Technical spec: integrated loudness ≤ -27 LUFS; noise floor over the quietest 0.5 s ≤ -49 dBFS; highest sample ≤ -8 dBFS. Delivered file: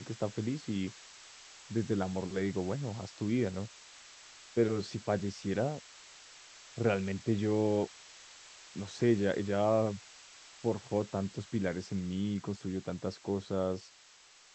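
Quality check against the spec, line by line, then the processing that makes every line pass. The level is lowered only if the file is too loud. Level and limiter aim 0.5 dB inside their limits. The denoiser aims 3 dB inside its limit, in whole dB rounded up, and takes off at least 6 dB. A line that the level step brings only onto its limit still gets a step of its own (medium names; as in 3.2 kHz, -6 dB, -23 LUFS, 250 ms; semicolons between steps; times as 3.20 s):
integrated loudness -34.0 LUFS: pass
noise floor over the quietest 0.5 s -59 dBFS: pass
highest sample -15.5 dBFS: pass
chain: none needed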